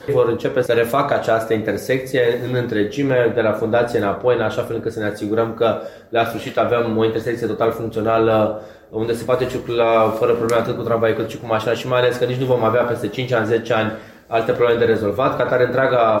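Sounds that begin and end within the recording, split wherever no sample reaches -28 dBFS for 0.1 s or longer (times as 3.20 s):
6.13–8.65 s
8.93–14.01 s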